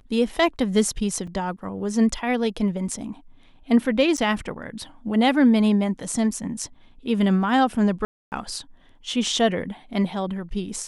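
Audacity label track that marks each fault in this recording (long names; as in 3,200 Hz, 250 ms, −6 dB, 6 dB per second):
1.270000	1.270000	drop-out 4.5 ms
4.170000	4.180000	drop-out 8 ms
8.050000	8.320000	drop-out 269 ms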